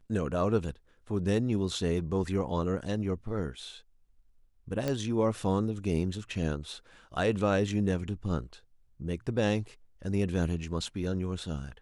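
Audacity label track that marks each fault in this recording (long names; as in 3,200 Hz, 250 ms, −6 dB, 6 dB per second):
4.880000	4.880000	click −17 dBFS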